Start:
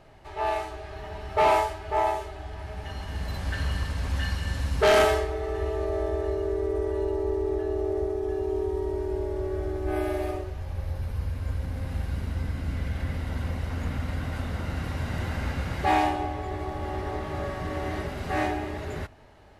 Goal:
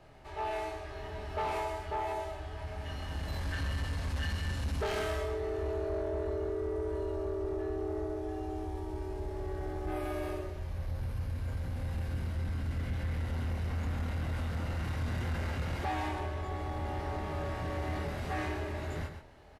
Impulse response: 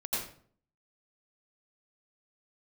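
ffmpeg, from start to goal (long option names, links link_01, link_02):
-filter_complex "[0:a]asplit=2[link_01][link_02];[link_02]adelay=25,volume=-4dB[link_03];[link_01][link_03]amix=inputs=2:normalize=0,asplit=2[link_04][link_05];[link_05]aecho=0:1:127:0.316[link_06];[link_04][link_06]amix=inputs=2:normalize=0,acrossover=split=140[link_07][link_08];[link_08]acompressor=threshold=-26dB:ratio=3[link_09];[link_07][link_09]amix=inputs=2:normalize=0,asoftclip=type=tanh:threshold=-23dB,volume=-4.5dB"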